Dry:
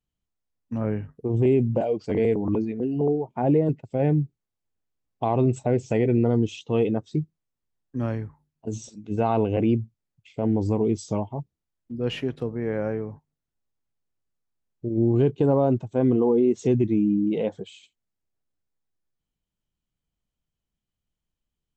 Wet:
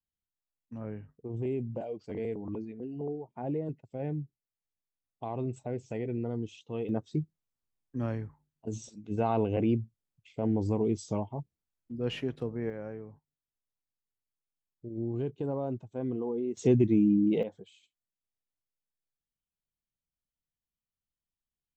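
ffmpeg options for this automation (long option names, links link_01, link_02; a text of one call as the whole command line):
ffmpeg -i in.wav -af "asetnsamples=nb_out_samples=441:pad=0,asendcmd='6.89 volume volume -5.5dB;12.7 volume volume -13dB;16.57 volume volume -2dB;17.43 volume volume -13dB',volume=-13dB" out.wav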